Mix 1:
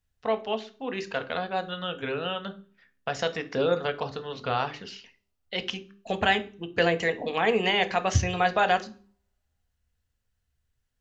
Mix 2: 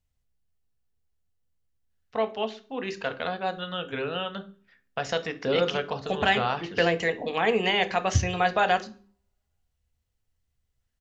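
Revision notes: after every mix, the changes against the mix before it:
first voice: entry +1.90 s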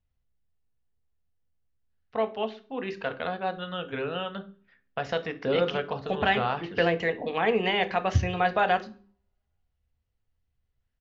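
master: add air absorption 190 m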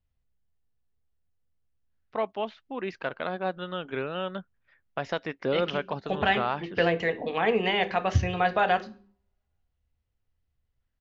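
first voice: send off

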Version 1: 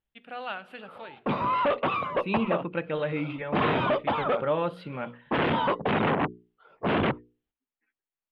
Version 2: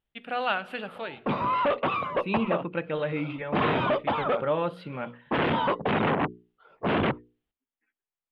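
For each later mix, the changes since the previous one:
first voice +8.0 dB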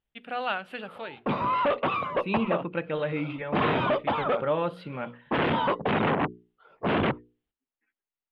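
first voice: send -11.5 dB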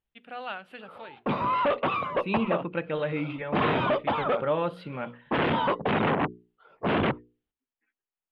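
first voice -6.5 dB

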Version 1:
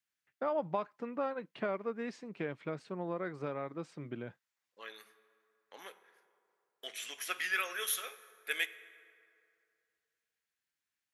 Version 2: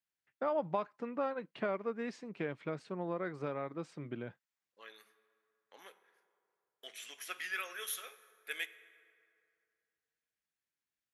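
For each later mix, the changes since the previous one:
second voice -5.5 dB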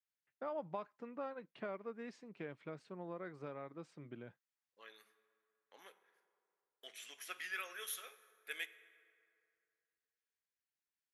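first voice -8.5 dB; second voice -4.0 dB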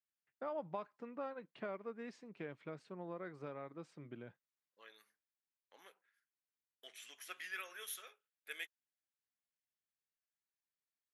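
reverb: off

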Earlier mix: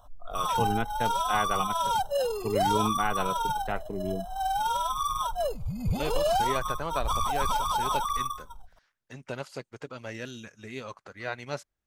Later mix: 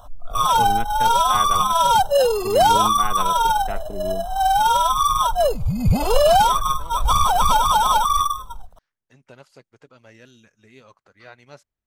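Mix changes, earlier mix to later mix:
second voice -9.5 dB; background +11.0 dB

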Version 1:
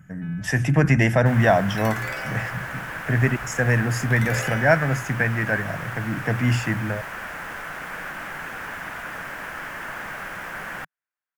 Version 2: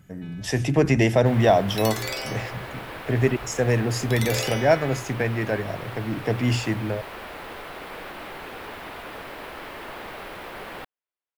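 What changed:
first sound: add high shelf 3700 Hz +10.5 dB; second sound: add bell 6600 Hz -9.5 dB 0.93 oct; master: add fifteen-band EQ 160 Hz -7 dB, 400 Hz +7 dB, 1600 Hz -11 dB, 4000 Hz +9 dB, 16000 Hz -3 dB

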